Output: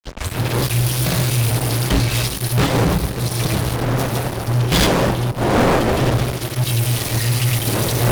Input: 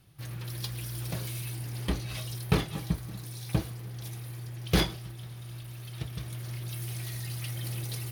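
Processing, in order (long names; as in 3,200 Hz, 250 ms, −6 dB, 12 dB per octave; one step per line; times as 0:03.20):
turntable start at the beginning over 0.36 s
wind on the microphone 540 Hz −36 dBFS
hum removal 98.36 Hz, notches 2
granular cloud 140 ms, grains 20 per second, pitch spread up and down by 0 semitones
flanger 1.5 Hz, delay 7 ms, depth 4.3 ms, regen +74%
fuzz pedal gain 46 dB, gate −48 dBFS
on a send: delay that swaps between a low-pass and a high-pass 386 ms, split 1,000 Hz, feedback 59%, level −13 dB
on the sum: multiband upward and downward expander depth 40%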